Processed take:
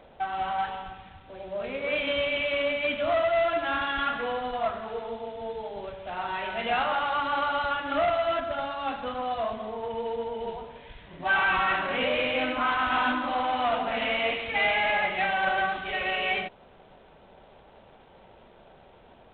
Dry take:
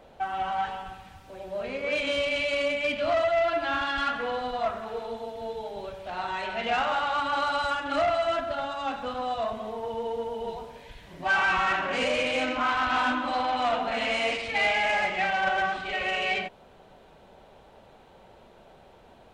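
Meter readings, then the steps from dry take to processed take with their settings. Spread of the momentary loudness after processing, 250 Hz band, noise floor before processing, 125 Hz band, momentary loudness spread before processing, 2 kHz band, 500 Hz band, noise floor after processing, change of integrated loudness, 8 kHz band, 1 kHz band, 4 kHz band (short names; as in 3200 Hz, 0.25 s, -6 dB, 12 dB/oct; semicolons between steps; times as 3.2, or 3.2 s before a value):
12 LU, 0.0 dB, -54 dBFS, +0.5 dB, 12 LU, 0.0 dB, 0.0 dB, -54 dBFS, 0.0 dB, under -30 dB, 0.0 dB, -0.5 dB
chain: G.726 24 kbps 8000 Hz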